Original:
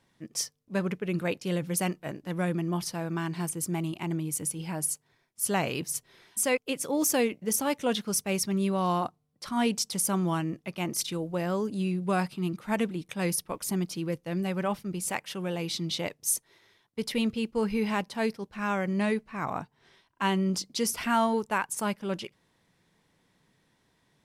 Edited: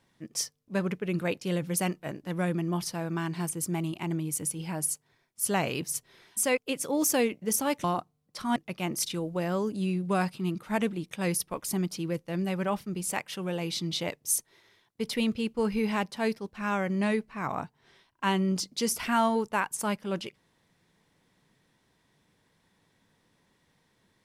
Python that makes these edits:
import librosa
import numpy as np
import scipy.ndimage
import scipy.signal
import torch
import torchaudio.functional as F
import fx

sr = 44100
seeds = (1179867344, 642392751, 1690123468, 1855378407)

y = fx.edit(x, sr, fx.cut(start_s=7.84, length_s=1.07),
    fx.cut(start_s=9.63, length_s=0.91), tone=tone)